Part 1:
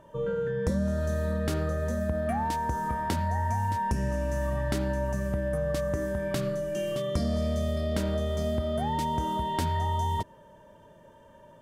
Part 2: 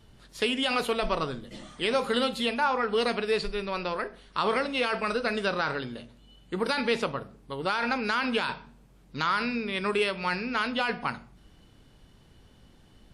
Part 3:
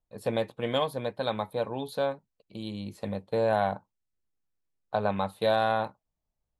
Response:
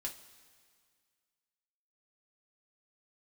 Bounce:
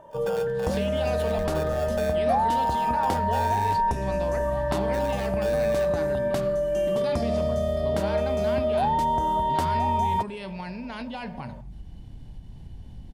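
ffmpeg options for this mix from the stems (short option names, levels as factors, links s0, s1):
-filter_complex "[0:a]volume=0.794[s0];[1:a]asubboost=boost=9.5:cutoff=170,alimiter=limit=0.0944:level=0:latency=1,adelay=350,volume=1[s1];[2:a]alimiter=limit=0.112:level=0:latency=1:release=35,aeval=exprs='val(0)*sgn(sin(2*PI*1000*n/s))':c=same,volume=0.891,afade=t=in:st=1.1:d=0.36:silence=0.334965[s2];[s1][s2]amix=inputs=2:normalize=0,equalizer=f=1300:w=3.6:g=-11.5,acompressor=threshold=0.0158:ratio=4,volume=1[s3];[s0][s3]amix=inputs=2:normalize=0,equalizer=f=740:w=1.1:g=11.5"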